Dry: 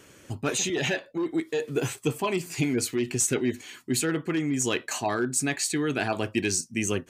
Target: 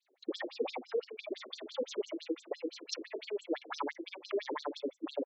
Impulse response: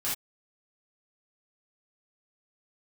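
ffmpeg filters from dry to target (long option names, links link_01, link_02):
-filter_complex "[0:a]asetrate=59535,aresample=44100,agate=range=-27dB:threshold=-42dB:ratio=16:detection=peak,acrossover=split=310|1400[link_01][link_02][link_03];[link_01]acompressor=threshold=-39dB:ratio=4[link_04];[link_02]acompressor=threshold=-35dB:ratio=4[link_05];[link_03]acompressor=threshold=-35dB:ratio=4[link_06];[link_04][link_05][link_06]amix=inputs=3:normalize=0,aemphasis=mode=reproduction:type=bsi,bandreject=frequency=50:width_type=h:width=6,bandreject=frequency=100:width_type=h:width=6,bandreject=frequency=150:width_type=h:width=6,bandreject=frequency=200:width_type=h:width=6,bandreject=frequency=250:width_type=h:width=6,bandreject=frequency=300:width_type=h:width=6,acrossover=split=170|3300[link_07][link_08][link_09];[link_08]adelay=60[link_10];[link_07]adelay=190[link_11];[link_11][link_10][link_09]amix=inputs=3:normalize=0,acompressor=threshold=-41dB:ratio=10,asplit=2[link_12][link_13];[link_13]equalizer=frequency=330:width=4.9:gain=11.5[link_14];[1:a]atrim=start_sample=2205[link_15];[link_14][link_15]afir=irnorm=-1:irlink=0,volume=-19.5dB[link_16];[link_12][link_16]amix=inputs=2:normalize=0,aeval=exprs='0.0188*(abs(mod(val(0)/0.0188+3,4)-2)-1)':channel_layout=same,afftfilt=real='re*between(b*sr/1024,330*pow(5700/330,0.5+0.5*sin(2*PI*5.9*pts/sr))/1.41,330*pow(5700/330,0.5+0.5*sin(2*PI*5.9*pts/sr))*1.41)':imag='im*between(b*sr/1024,330*pow(5700/330,0.5+0.5*sin(2*PI*5.9*pts/sr))/1.41,330*pow(5700/330,0.5+0.5*sin(2*PI*5.9*pts/sr))*1.41)':win_size=1024:overlap=0.75,volume=14dB"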